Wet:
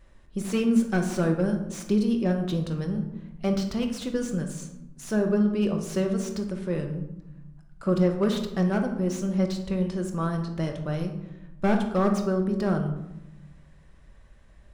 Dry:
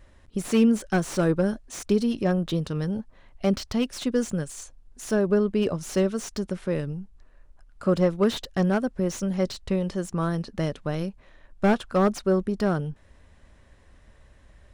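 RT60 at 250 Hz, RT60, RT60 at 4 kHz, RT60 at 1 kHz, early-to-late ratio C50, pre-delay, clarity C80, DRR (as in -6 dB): 1.5 s, 0.85 s, 0.50 s, 0.85 s, 7.5 dB, 5 ms, 10.0 dB, 3.5 dB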